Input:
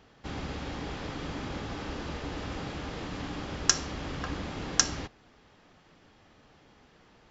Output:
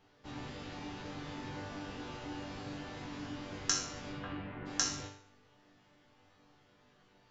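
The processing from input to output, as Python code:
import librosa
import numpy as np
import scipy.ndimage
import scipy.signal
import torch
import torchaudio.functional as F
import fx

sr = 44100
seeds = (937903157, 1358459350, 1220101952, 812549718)

y = fx.lowpass(x, sr, hz=fx.line((4.12, 4200.0), (4.65, 2000.0)), slope=24, at=(4.12, 4.65), fade=0.02)
y = fx.resonator_bank(y, sr, root=43, chord='major', decay_s=0.57)
y = y * 10.0 ** (9.5 / 20.0)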